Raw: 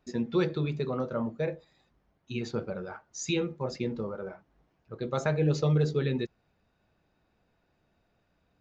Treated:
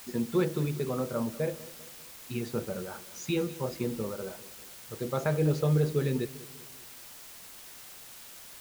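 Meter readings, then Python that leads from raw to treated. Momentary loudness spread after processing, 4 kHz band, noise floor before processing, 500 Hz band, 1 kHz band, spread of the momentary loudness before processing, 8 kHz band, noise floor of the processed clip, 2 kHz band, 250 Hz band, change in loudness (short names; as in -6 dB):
18 LU, -1.5 dB, -73 dBFS, 0.0 dB, -0.5 dB, 13 LU, n/a, -48 dBFS, -1.5 dB, 0.0 dB, -0.5 dB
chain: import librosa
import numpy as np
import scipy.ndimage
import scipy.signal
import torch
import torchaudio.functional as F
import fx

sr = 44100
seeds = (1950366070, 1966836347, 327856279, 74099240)

y = fx.high_shelf(x, sr, hz=2600.0, db=-7.0)
y = fx.quant_dither(y, sr, seeds[0], bits=8, dither='triangular')
y = fx.echo_feedback(y, sr, ms=197, feedback_pct=46, wet_db=-18.0)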